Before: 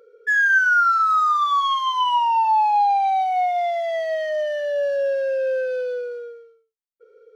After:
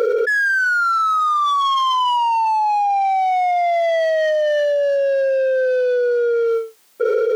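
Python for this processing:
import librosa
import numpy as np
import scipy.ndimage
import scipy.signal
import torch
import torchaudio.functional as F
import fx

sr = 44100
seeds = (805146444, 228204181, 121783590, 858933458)

p1 = scipy.signal.sosfilt(scipy.signal.butter(2, 220.0, 'highpass', fs=sr, output='sos'), x)
p2 = 10.0 ** (-28.0 / 20.0) * np.tanh(p1 / 10.0 ** (-28.0 / 20.0))
p3 = p1 + F.gain(torch.from_numpy(p2), -3.0).numpy()
p4 = fx.env_flatten(p3, sr, amount_pct=100)
y = F.gain(torch.from_numpy(p4), -4.0).numpy()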